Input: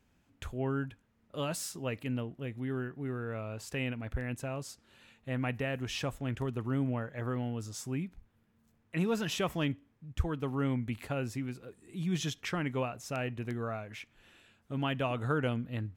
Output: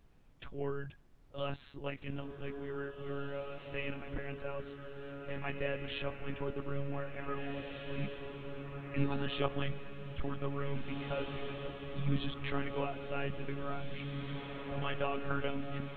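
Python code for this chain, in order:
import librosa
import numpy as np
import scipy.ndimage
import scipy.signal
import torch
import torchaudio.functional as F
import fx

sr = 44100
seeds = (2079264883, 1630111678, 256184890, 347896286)

y = x + 0.84 * np.pad(x, (int(5.5 * sr / 1000.0), 0))[:len(x)]
y = fx.lpc_monotone(y, sr, seeds[0], pitch_hz=140.0, order=16)
y = fx.echo_diffused(y, sr, ms=1975, feedback_pct=54, wet_db=-5.0)
y = fx.dmg_noise_colour(y, sr, seeds[1], colour='brown', level_db=-57.0)
y = y * 10.0 ** (-5.0 / 20.0)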